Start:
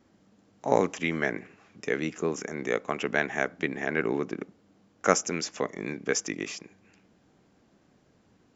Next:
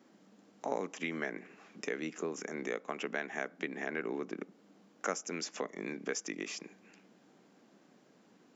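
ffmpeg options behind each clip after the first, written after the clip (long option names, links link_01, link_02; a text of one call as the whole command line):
ffmpeg -i in.wav -af "highpass=frequency=180:width=0.5412,highpass=frequency=180:width=1.3066,acompressor=threshold=-39dB:ratio=2.5,volume=1dB" out.wav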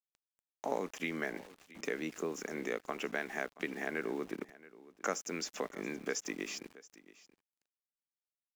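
ffmpeg -i in.wav -af "aeval=exprs='val(0)*gte(abs(val(0)),0.00299)':channel_layout=same,aecho=1:1:676:0.106" out.wav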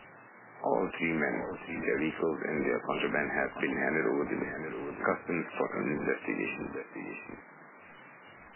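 ffmpeg -i in.wav -af "aeval=exprs='val(0)+0.5*0.0158*sgn(val(0))':channel_layout=same,volume=4.5dB" -ar 8000 -c:a libmp3lame -b:a 8k out.mp3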